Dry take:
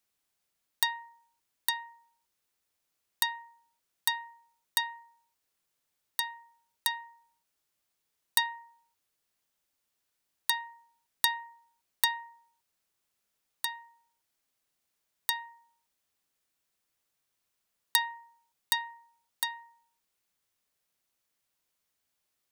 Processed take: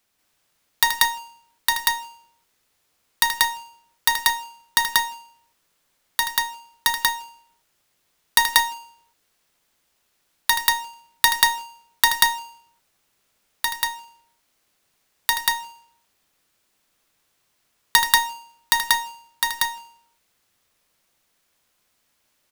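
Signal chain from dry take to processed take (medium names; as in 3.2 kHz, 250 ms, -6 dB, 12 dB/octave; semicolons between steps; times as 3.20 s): square wave that keeps the level; loudspeakers at several distances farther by 27 m -9 dB, 64 m 0 dB; trim +6 dB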